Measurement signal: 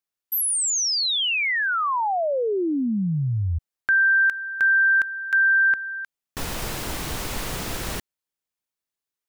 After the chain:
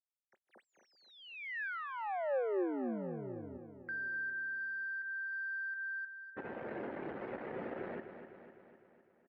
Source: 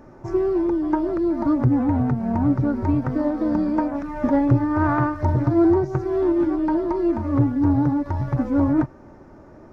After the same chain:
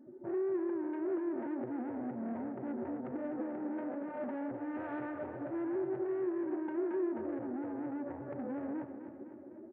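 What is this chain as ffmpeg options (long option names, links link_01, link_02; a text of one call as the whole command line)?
ffmpeg -i in.wav -af "afftdn=noise_reduction=22:noise_floor=-34,acompressor=threshold=-30dB:ratio=5:attack=9.8:release=112:detection=rms,asoftclip=type=tanh:threshold=-36.5dB,highpass=220,equalizer=frequency=230:width_type=q:width=4:gain=5,equalizer=frequency=370:width_type=q:width=4:gain=8,equalizer=frequency=540:width_type=q:width=4:gain=8,equalizer=frequency=770:width_type=q:width=4:gain=3,equalizer=frequency=1100:width_type=q:width=4:gain=-5,equalizer=frequency=1700:width_type=q:width=4:gain=3,lowpass=frequency=2100:width=0.5412,lowpass=frequency=2100:width=1.3066,aecho=1:1:253|506|759|1012|1265|1518|1771:0.335|0.194|0.113|0.0654|0.0379|0.022|0.0128,volume=-3dB" out.wav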